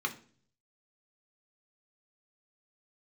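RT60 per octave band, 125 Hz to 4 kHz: 0.90, 0.65, 0.50, 0.40, 0.40, 0.45 s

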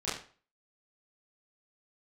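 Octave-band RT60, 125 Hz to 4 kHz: 0.40, 0.40, 0.40, 0.40, 0.40, 0.35 s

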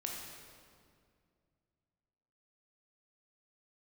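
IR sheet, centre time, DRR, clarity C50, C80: 88 ms, -1.5 dB, 1.0 dB, 2.5 dB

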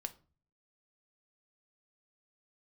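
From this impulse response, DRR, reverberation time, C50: 8.0 dB, 0.40 s, 17.5 dB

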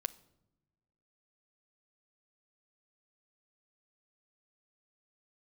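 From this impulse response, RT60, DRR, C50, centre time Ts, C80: not exponential, 8.0 dB, 20.0 dB, 3 ms, 22.5 dB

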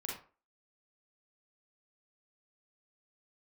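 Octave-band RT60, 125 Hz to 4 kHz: 0.30, 0.35, 0.40, 0.35, 0.30, 0.25 s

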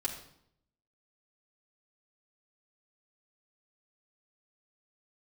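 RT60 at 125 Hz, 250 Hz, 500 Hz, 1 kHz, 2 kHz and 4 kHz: 0.95, 0.85, 0.75, 0.70, 0.60, 0.60 s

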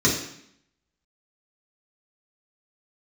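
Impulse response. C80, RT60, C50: 8.5 dB, 0.70 s, 5.0 dB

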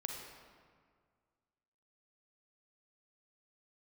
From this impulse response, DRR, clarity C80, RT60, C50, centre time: 1.5 dB, 4.0 dB, 1.9 s, 2.0 dB, 69 ms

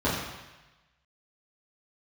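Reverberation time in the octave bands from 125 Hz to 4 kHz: 1.2, 0.95, 1.0, 1.1, 1.2, 1.2 s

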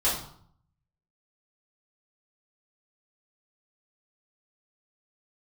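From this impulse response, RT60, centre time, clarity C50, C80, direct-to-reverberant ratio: 0.60 s, 42 ms, 4.0 dB, 8.5 dB, -10.0 dB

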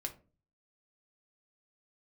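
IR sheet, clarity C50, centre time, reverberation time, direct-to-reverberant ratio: 14.0 dB, 8 ms, 0.35 s, 3.5 dB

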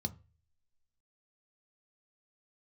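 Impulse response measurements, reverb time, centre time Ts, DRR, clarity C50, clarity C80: 0.35 s, 4 ms, 8.0 dB, 21.0 dB, 26.0 dB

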